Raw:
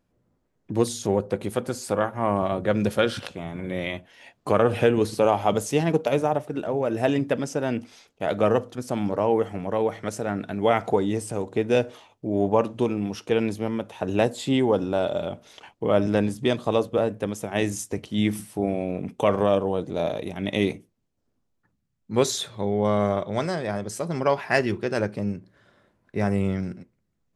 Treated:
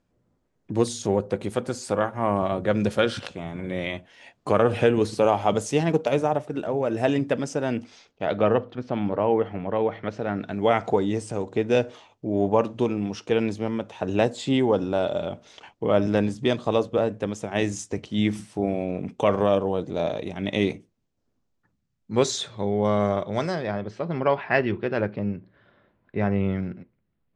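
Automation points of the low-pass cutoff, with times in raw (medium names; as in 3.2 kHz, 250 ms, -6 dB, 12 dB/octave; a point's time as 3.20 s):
low-pass 24 dB/octave
7.72 s 9.1 kHz
8.61 s 3.7 kHz
10.11 s 3.7 kHz
10.56 s 7.8 kHz
23.43 s 7.8 kHz
23.84 s 3.6 kHz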